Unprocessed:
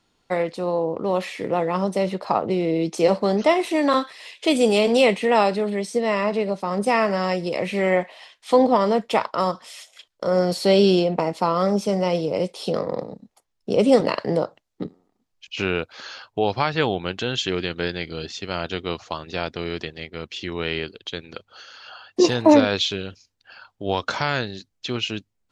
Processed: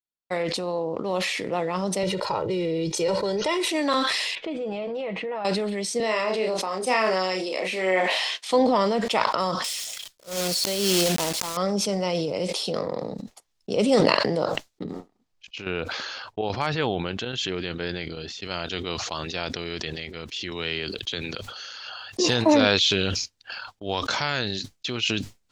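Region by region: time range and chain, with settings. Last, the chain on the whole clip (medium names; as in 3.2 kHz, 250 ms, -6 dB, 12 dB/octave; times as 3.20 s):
2.03–3.68 s: tone controls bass +6 dB, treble 0 dB + comb 2.1 ms, depth 92% + compression 3:1, threshold -18 dBFS
4.35–5.45 s: low-pass 1.6 kHz + comb 6.2 ms, depth 51% + compression, threshold -23 dBFS
6.00–8.51 s: high-pass 250 Hz 24 dB/octave + doubling 32 ms -5 dB
9.64–11.57 s: block-companded coder 3-bit + treble shelf 4 kHz +7 dB + slow attack 328 ms
14.83–18.42 s: treble shelf 2.8 kHz -8.5 dB + square tremolo 1.2 Hz, depth 65%, duty 90% + hard clipper -9.5 dBFS
20.51–22.26 s: treble shelf 6.3 kHz +4.5 dB + three bands compressed up and down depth 40%
whole clip: expander -37 dBFS; peaking EQ 5.3 kHz +7 dB 2.5 oct; decay stretcher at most 22 dB/s; trim -5.5 dB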